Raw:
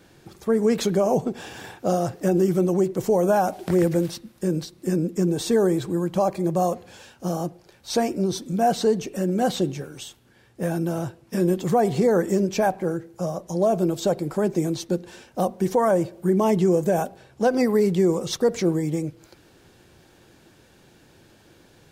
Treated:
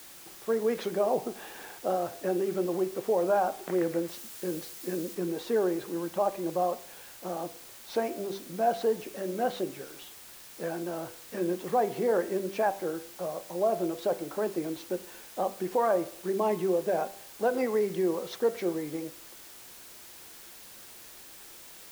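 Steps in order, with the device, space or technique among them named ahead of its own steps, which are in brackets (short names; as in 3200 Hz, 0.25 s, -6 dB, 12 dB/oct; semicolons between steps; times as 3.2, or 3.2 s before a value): wax cylinder (BPF 350–2700 Hz; wow and flutter; white noise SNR 18 dB); de-hum 98.18 Hz, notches 33; 4.08–5.15 high shelf 4400 Hz +5.5 dB; gain -4.5 dB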